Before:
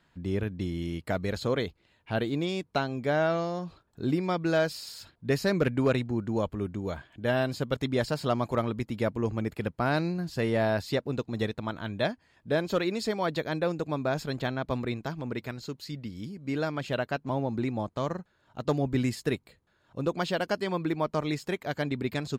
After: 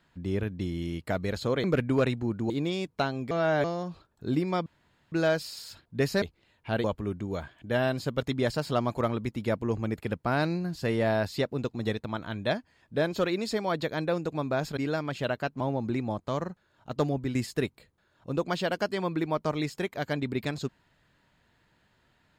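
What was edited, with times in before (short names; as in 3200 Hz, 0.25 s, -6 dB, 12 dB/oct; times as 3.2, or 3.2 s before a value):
1.64–2.26 swap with 5.52–6.38
3.07–3.4 reverse
4.42 insert room tone 0.46 s
14.31–16.46 cut
18.74–19.04 fade out, to -7 dB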